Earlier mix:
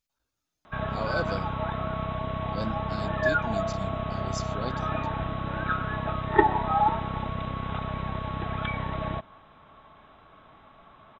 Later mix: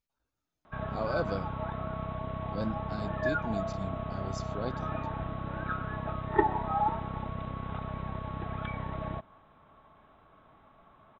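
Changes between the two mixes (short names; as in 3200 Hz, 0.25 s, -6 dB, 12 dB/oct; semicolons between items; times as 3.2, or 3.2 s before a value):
background -4.5 dB; master: add high shelf 2500 Hz -10 dB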